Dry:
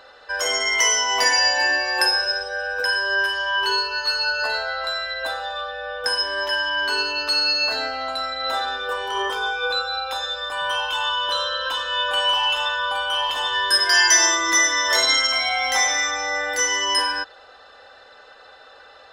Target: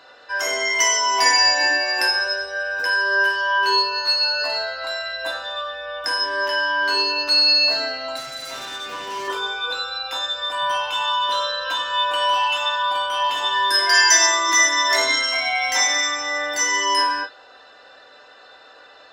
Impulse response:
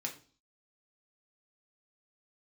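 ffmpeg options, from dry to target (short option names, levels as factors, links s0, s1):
-filter_complex "[0:a]asettb=1/sr,asplit=3[s0][s1][s2];[s0]atrim=end=8.164[s3];[s1]atrim=start=8.16:end=9.28,asetpts=PTS-STARTPTS,afade=t=in:d=0.004:c=qsin,afade=t=out:st=1.116:d=0.004:c=qsin,asoftclip=type=hard:threshold=0.0335[s4];[s2]atrim=start=9.276[s5];[s3][s4]acrossfade=d=0.004:c1=hsin:c2=qsin[s6];[s6][s5]acrossfade=d=0.004:c1=qsin:c2=hsin[s7];[1:a]atrim=start_sample=2205,atrim=end_sample=3087,asetrate=48510,aresample=44100[s8];[s7][s8]afir=irnorm=-1:irlink=0,volume=1.19"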